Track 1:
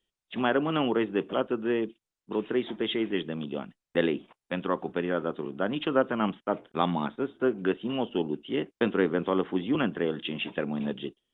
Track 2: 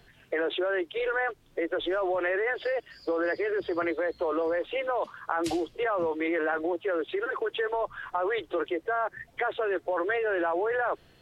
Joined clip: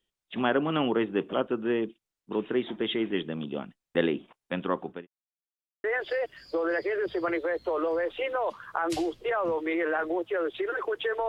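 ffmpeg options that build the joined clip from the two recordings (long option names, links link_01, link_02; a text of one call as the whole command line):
ffmpeg -i cue0.wav -i cue1.wav -filter_complex "[0:a]apad=whole_dur=11.28,atrim=end=11.28,asplit=2[link_01][link_02];[link_01]atrim=end=5.07,asetpts=PTS-STARTPTS,afade=type=out:start_time=4.65:duration=0.42:curve=qsin[link_03];[link_02]atrim=start=5.07:end=5.84,asetpts=PTS-STARTPTS,volume=0[link_04];[1:a]atrim=start=2.38:end=7.82,asetpts=PTS-STARTPTS,afade=type=in:duration=0.004:curve=hsin[link_05];[link_03][link_04][link_05]concat=n=3:v=0:a=1" out.wav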